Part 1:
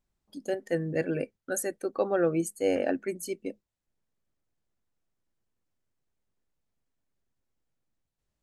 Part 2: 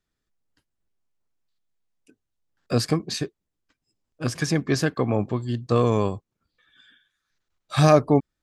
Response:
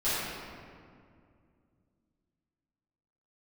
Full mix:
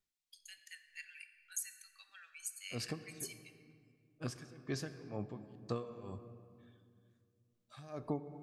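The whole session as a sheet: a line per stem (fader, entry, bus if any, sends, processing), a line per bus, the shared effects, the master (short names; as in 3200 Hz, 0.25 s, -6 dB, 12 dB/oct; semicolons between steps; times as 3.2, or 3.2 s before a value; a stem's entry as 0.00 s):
-4.0 dB, 0.00 s, send -18.5 dB, inverse Chebyshev high-pass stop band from 400 Hz, stop band 80 dB
-10.5 dB, 0.00 s, send -22.5 dB, dB-linear tremolo 2.1 Hz, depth 28 dB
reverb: on, RT60 2.2 s, pre-delay 4 ms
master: compressor 2:1, threshold -38 dBFS, peak gain reduction 7.5 dB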